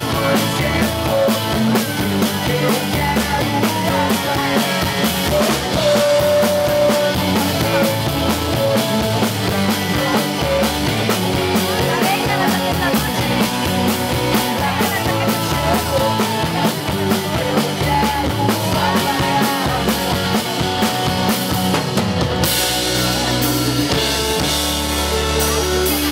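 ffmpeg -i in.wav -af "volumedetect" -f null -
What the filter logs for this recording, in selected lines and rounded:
mean_volume: -17.0 dB
max_volume: -1.9 dB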